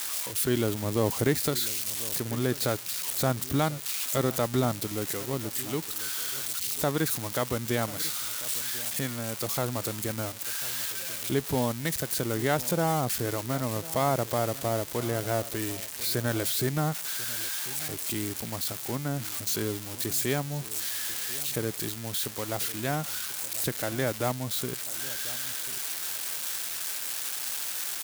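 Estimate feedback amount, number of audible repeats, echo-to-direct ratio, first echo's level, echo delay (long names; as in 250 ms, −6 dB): 22%, 2, −18.0 dB, −18.0 dB, 1,043 ms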